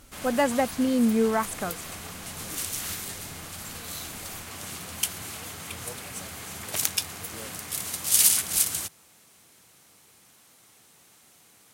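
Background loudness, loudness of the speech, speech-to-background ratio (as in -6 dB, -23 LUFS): -28.5 LUFS, -25.5 LUFS, 3.0 dB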